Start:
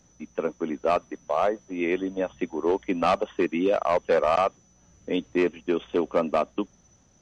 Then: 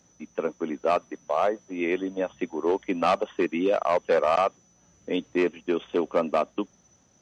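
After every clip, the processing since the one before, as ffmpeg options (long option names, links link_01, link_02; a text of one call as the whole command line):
ffmpeg -i in.wav -af "highpass=frequency=150:poles=1" out.wav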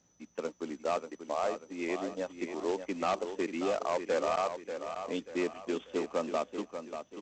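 ffmpeg -i in.wav -af "aecho=1:1:588|1176|1764|2352:0.376|0.147|0.0572|0.0223,aresample=16000,acrusher=bits=4:mode=log:mix=0:aa=0.000001,aresample=44100,volume=-8.5dB" out.wav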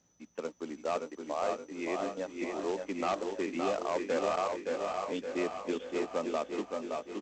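ffmpeg -i in.wav -af "aecho=1:1:568|1136|1704|2272|2840|3408:0.562|0.264|0.124|0.0584|0.0274|0.0129,volume=-1.5dB" out.wav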